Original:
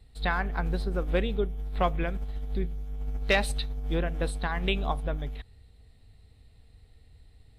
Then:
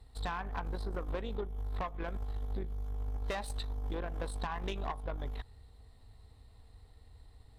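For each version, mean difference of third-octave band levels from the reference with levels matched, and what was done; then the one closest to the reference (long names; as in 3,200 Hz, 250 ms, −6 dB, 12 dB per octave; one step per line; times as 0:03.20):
6.0 dB: graphic EQ with 15 bands 160 Hz −6 dB, 1,000 Hz +10 dB, 2,500 Hz −6 dB
downward compressor 16 to 1, threshold −31 dBFS, peak gain reduction 16.5 dB
tube saturation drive 31 dB, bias 0.55
level +2 dB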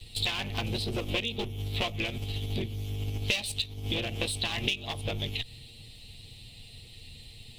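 10.0 dB: lower of the sound and its delayed copy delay 8.6 ms
high shelf with overshoot 2,100 Hz +10.5 dB, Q 3
downward compressor 6 to 1, threshold −36 dBFS, peak gain reduction 23 dB
level +7.5 dB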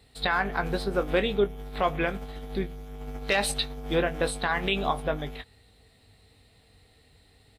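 3.5 dB: high-pass filter 330 Hz 6 dB per octave
brickwall limiter −21.5 dBFS, peak gain reduction 9.5 dB
double-tracking delay 20 ms −9.5 dB
level +7.5 dB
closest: third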